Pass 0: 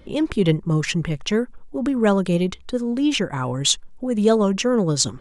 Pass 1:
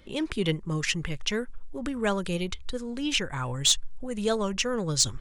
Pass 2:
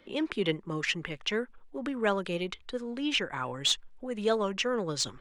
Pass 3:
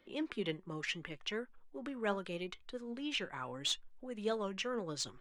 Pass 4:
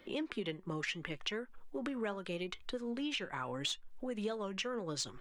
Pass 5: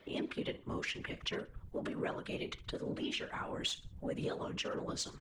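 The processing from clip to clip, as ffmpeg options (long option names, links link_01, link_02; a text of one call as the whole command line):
ffmpeg -i in.wav -filter_complex "[0:a]asubboost=boost=7:cutoff=83,acrossover=split=1400[link_01][link_02];[link_02]acontrast=89[link_03];[link_01][link_03]amix=inputs=2:normalize=0,volume=-8.5dB" out.wav
ffmpeg -i in.wav -filter_complex "[0:a]acrossover=split=200 3900:gain=0.141 1 0.251[link_01][link_02][link_03];[link_01][link_02][link_03]amix=inputs=3:normalize=0" out.wav
ffmpeg -i in.wav -af "flanger=delay=2.7:depth=2.7:regen=82:speed=0.78:shape=sinusoidal,volume=-4dB" out.wav
ffmpeg -i in.wav -af "acompressor=threshold=-44dB:ratio=6,volume=8.5dB" out.wav
ffmpeg -i in.wav -af "aecho=1:1:61|122|183:0.126|0.0441|0.0154,afftfilt=real='hypot(re,im)*cos(2*PI*random(0))':imag='hypot(re,im)*sin(2*PI*random(1))':win_size=512:overlap=0.75,volume=5.5dB" out.wav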